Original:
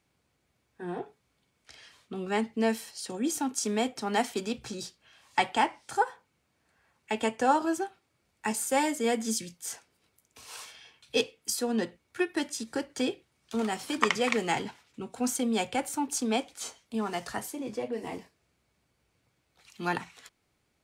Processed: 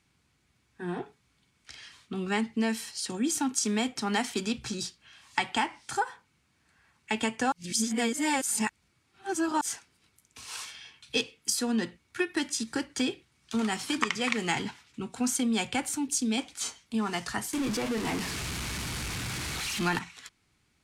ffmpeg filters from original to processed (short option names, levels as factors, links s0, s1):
-filter_complex "[0:a]asettb=1/sr,asplit=3[s0][s1][s2];[s0]atrim=end=15.974[s3];[s1]atrim=start=15.97:end=16.38,asetpts=PTS-STARTPTS,afade=t=in:d=0.004:c=qsin,afade=t=out:st=0.406:d=0.004:c=qsin,equalizer=f=1100:w=0.92:g=-14[s4];[s2]atrim=start=16.376[s5];[s3][s4]acrossfade=d=0.004:c1=hsin:c2=qsin[s6];[s6][s5]acrossfade=d=0.004:c1=qsin:c2=hsin,asettb=1/sr,asplit=3[s7][s8][s9];[s7]atrim=end=17.534[s10];[s8]atrim=start=17.53:end=19.99,asetpts=PTS-STARTPTS,afade=t=in:d=0.004:c=qsin,afade=t=out:st=2.456:d=0.004:c=qsin,aeval=exprs='val(0)+0.5*0.0237*sgn(val(0))':c=same[s11];[s9]atrim=start=19.986[s12];[s10][s11]acrossfade=d=0.004:c1=hsin:c2=qsin[s13];[s13][s12]acrossfade=d=0.004:c1=qsin:c2=hsin,asplit=3[s14][s15][s16];[s14]atrim=end=7.522[s17];[s15]atrim=start=7.518:end=9.612,asetpts=PTS-STARTPTS,areverse[s18];[s16]atrim=start=9.608[s19];[s17][s18]acrossfade=d=0.004:c1=hsin:c2=hsin[s20];[s20][s19]acrossfade=d=0.004:c1=hsin:c2=hsin,lowpass=11000,equalizer=f=560:t=o:w=1.1:g=-10.5,acompressor=threshold=0.0355:ratio=6,volume=1.88"